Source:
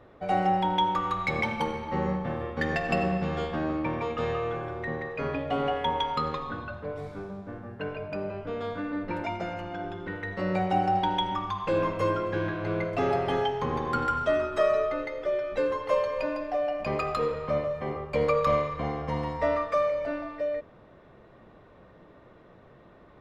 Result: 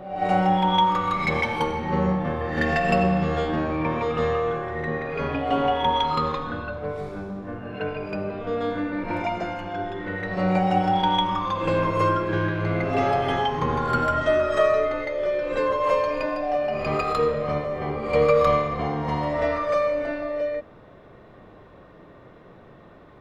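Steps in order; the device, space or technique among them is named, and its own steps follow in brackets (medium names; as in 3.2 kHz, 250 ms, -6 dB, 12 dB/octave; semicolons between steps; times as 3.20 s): reverse reverb (reverse; reverberation RT60 0.90 s, pre-delay 25 ms, DRR 4.5 dB; reverse); trim +4 dB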